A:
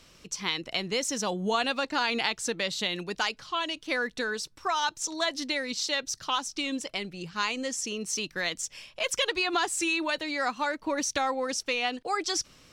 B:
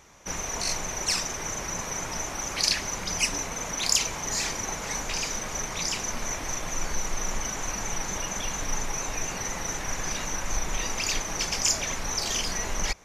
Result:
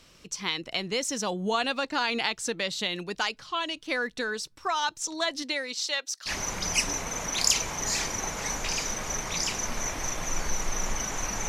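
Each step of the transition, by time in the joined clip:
A
5.42–6.31 HPF 240 Hz -> 990 Hz
6.28 switch to B from 2.73 s, crossfade 0.06 s

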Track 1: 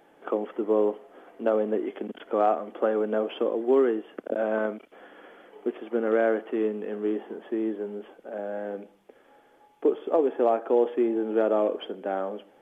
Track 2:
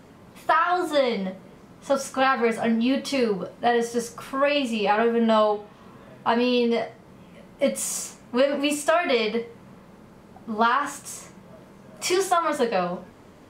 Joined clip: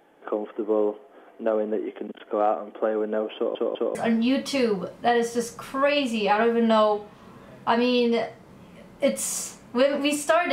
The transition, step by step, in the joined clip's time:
track 1
3.35 stutter in place 0.20 s, 3 plays
3.95 switch to track 2 from 2.54 s

